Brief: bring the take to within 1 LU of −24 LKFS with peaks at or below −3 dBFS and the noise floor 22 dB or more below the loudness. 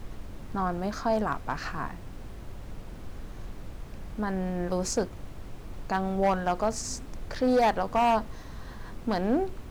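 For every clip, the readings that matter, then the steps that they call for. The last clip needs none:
share of clipped samples 0.9%; peaks flattened at −18.0 dBFS; background noise floor −43 dBFS; target noise floor −51 dBFS; integrated loudness −29.0 LKFS; sample peak −18.0 dBFS; target loudness −24.0 LKFS
→ clipped peaks rebuilt −18 dBFS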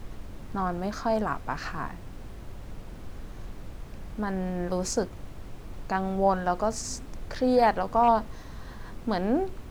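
share of clipped samples 0.0%; background noise floor −43 dBFS; target noise floor −50 dBFS
→ noise reduction from a noise print 7 dB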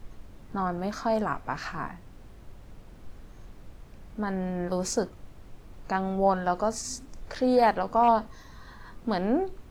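background noise floor −49 dBFS; target noise floor −50 dBFS
→ noise reduction from a noise print 6 dB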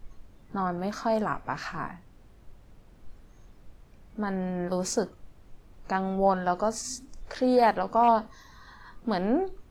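background noise floor −54 dBFS; integrated loudness −28.0 LKFS; sample peak −11.0 dBFS; target loudness −24.0 LKFS
→ level +4 dB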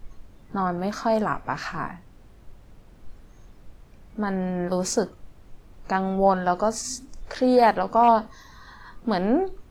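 integrated loudness −24.0 LKFS; sample peak −7.0 dBFS; background noise floor −50 dBFS

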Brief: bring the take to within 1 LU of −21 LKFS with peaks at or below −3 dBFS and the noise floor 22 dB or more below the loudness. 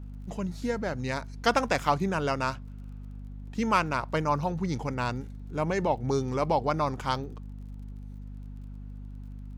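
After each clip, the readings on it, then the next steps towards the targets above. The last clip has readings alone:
crackle rate 36 per second; mains hum 50 Hz; hum harmonics up to 250 Hz; level of the hum −38 dBFS; integrated loudness −29.0 LKFS; sample peak −8.5 dBFS; target loudness −21.0 LKFS
→ click removal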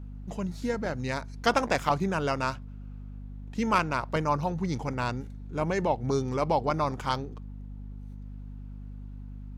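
crackle rate 0.21 per second; mains hum 50 Hz; hum harmonics up to 250 Hz; level of the hum −38 dBFS
→ mains-hum notches 50/100/150/200/250 Hz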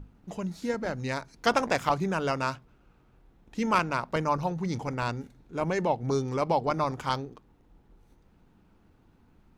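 mains hum none found; integrated loudness −29.5 LKFS; sample peak −9.0 dBFS; target loudness −21.0 LKFS
→ level +8.5 dB
brickwall limiter −3 dBFS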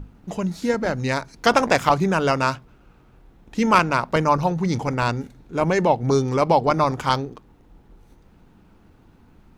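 integrated loudness −21.0 LKFS; sample peak −3.0 dBFS; background noise floor −54 dBFS

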